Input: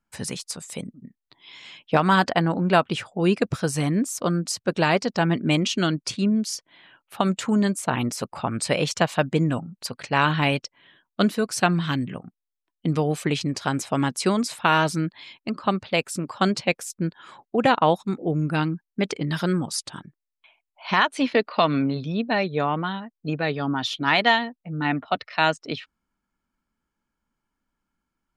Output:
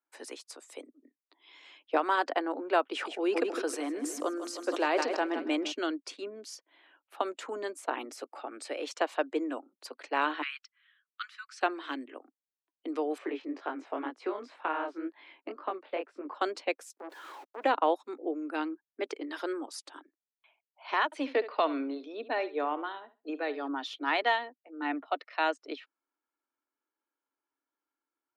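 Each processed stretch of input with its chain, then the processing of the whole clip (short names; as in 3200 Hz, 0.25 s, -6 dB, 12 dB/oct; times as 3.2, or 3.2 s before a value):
2.86–5.72 feedback echo 0.156 s, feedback 49%, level -14 dB + sustainer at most 36 dB/s
8.04–8.84 compressor 2.5:1, threshold -24 dBFS + notch 1000 Hz, Q 6.3
10.42–11.61 steep high-pass 1200 Hz 72 dB/oct + air absorption 99 m
13.18–16.35 LPF 2300 Hz + chorus 2 Hz, delay 19 ms, depth 6.3 ms + three-band squash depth 70%
16.97–17.64 zero-crossing step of -35 dBFS + compressor, threshold -23 dBFS + core saturation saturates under 940 Hz
21.05–23.68 high shelf 8300 Hz -3 dB + flutter echo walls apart 11.7 m, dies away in 0.27 s
whole clip: steep high-pass 280 Hz 72 dB/oct; high shelf 3000 Hz -10 dB; gain -6.5 dB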